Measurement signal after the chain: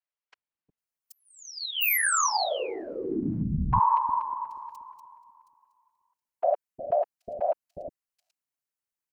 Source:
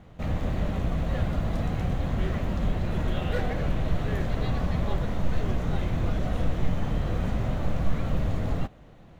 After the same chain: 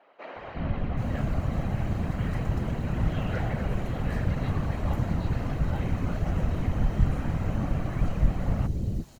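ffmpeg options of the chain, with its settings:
-filter_complex "[0:a]afftfilt=real='hypot(re,im)*cos(2*PI*random(0))':imag='hypot(re,im)*sin(2*PI*random(1))':win_size=512:overlap=0.75,bandreject=f=3500:w=8.4,acrossover=split=430|4000[s0][s1][s2];[s0]adelay=360[s3];[s2]adelay=780[s4];[s3][s1][s4]amix=inputs=3:normalize=0,volume=1.88"

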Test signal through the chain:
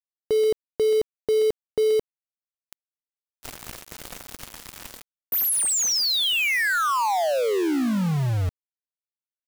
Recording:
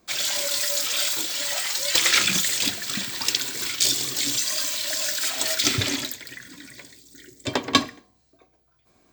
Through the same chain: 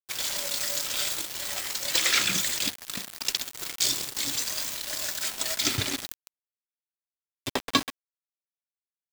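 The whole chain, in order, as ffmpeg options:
-filter_complex "[0:a]asplit=2[s0][s1];[s1]adelay=130,highpass=300,lowpass=3400,asoftclip=type=hard:threshold=0.282,volume=0.282[s2];[s0][s2]amix=inputs=2:normalize=0,acontrast=27,aeval=exprs='val(0)*gte(abs(val(0)),0.119)':c=same,volume=0.376"

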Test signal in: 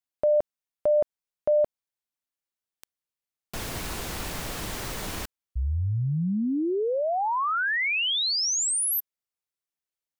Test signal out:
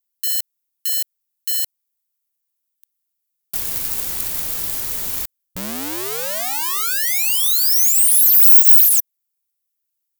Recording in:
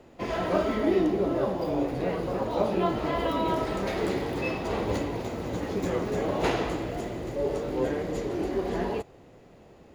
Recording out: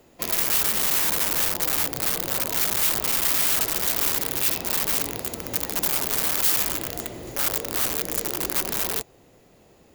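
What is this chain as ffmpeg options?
-af "aeval=exprs='(mod(15.8*val(0)+1,2)-1)/15.8':c=same,aeval=exprs='0.0668*(cos(1*acos(clip(val(0)/0.0668,-1,1)))-cos(1*PI/2))+0.000944*(cos(8*acos(clip(val(0)/0.0668,-1,1)))-cos(8*PI/2))':c=same,aemphasis=mode=production:type=75fm,volume=0.75"

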